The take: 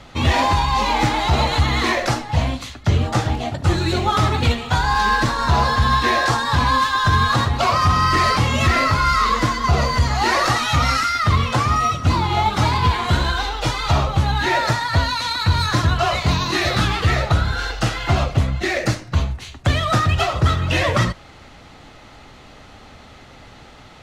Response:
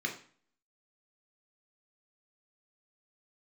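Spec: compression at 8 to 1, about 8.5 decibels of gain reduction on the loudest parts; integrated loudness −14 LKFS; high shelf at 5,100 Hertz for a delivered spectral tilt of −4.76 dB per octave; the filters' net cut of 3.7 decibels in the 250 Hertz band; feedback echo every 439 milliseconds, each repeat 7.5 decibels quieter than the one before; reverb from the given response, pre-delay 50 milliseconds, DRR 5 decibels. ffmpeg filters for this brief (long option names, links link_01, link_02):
-filter_complex "[0:a]equalizer=frequency=250:width_type=o:gain=-5.5,highshelf=frequency=5100:gain=-5,acompressor=threshold=-21dB:ratio=8,aecho=1:1:439|878|1317|1756|2195:0.422|0.177|0.0744|0.0312|0.0131,asplit=2[link_01][link_02];[1:a]atrim=start_sample=2205,adelay=50[link_03];[link_02][link_03]afir=irnorm=-1:irlink=0,volume=-10dB[link_04];[link_01][link_04]amix=inputs=2:normalize=0,volume=9.5dB"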